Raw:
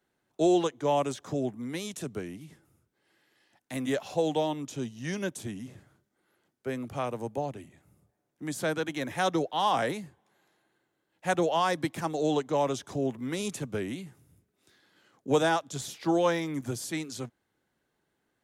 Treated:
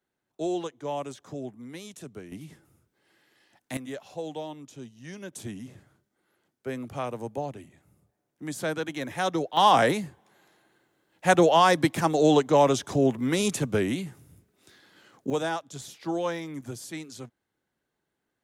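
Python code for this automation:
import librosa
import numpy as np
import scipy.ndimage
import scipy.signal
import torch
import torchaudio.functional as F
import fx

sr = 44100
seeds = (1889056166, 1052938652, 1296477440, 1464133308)

y = fx.gain(x, sr, db=fx.steps((0.0, -6.0), (2.32, 3.5), (3.77, -8.0), (5.33, 0.0), (9.57, 7.5), (15.3, -4.0)))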